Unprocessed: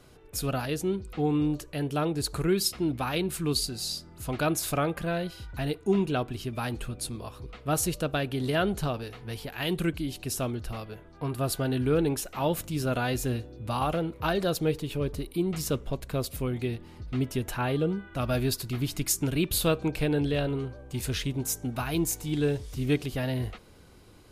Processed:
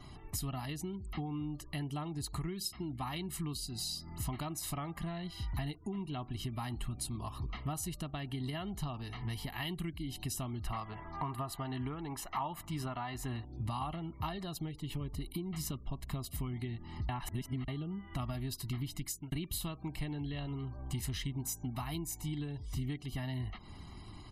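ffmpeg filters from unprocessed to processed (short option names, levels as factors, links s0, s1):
-filter_complex "[0:a]asettb=1/sr,asplit=3[s0][s1][s2];[s0]atrim=end=10.664[s3];[s1]atrim=start=10.66:end=13.45,asetpts=PTS-STARTPTS,afade=t=in:d=0.004:c=qsin,afade=t=out:st=2.786:d=0.004:c=qsin,equalizer=f=1100:t=o:w=2.2:g=11[s4];[s2]atrim=start=13.446[s5];[s3][s4]acrossfade=d=0.004:c1=hsin:c2=qsin[s6];[s6][s5]acrossfade=d=0.004:c1=qsin:c2=hsin,asplit=4[s7][s8][s9][s10];[s7]atrim=end=17.092[s11];[s8]atrim=start=17.088:end=17.682,asetpts=PTS-STARTPTS,areverse[s12];[s9]atrim=start=17.678:end=19.32,asetpts=PTS-STARTPTS,afade=t=out:st=1.052:d=0.59[s13];[s10]atrim=start=19.32,asetpts=PTS-STARTPTS,afade=t=in:d=0.004:c=hsin[s14];[s11][s12]acrossfade=d=0.004:c1=hsin:c2=hsin[s15];[s13][s14]concat=n=2:v=0:a=1[s16];[s15][s16]acrossfade=d=0.004:c1=hsin:c2=hsin,acompressor=threshold=0.01:ratio=8,afftfilt=real='re*gte(hypot(re,im),0.000708)':imag='im*gte(hypot(re,im),0.000708)':win_size=1024:overlap=0.75,aecho=1:1:1:0.87,volume=1.19"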